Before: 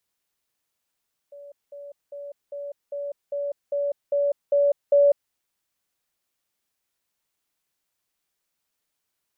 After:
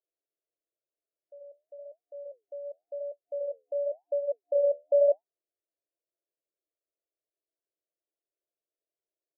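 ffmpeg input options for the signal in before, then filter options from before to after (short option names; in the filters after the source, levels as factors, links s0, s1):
-f lavfi -i "aevalsrc='pow(10,(-40+3*floor(t/0.4))/20)*sin(2*PI*571*t)*clip(min(mod(t,0.4),0.2-mod(t,0.4))/0.005,0,1)':d=4:s=44100"
-af "afftfilt=real='re*between(b*sr/4096,300,710)':imag='im*between(b*sr/4096,300,710)':win_size=4096:overlap=0.75,flanger=delay=4.3:depth=8.7:regen=-70:speed=0.93:shape=sinusoidal"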